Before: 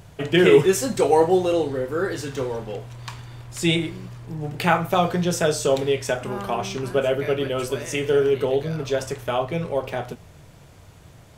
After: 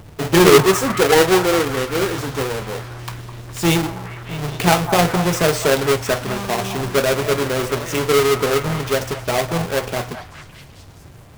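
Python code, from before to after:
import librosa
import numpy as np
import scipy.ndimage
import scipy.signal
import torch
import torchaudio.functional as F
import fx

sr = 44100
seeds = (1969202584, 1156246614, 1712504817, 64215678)

y = fx.halfwave_hold(x, sr)
y = fx.echo_stepped(y, sr, ms=206, hz=940.0, octaves=0.7, feedback_pct=70, wet_db=-7.0)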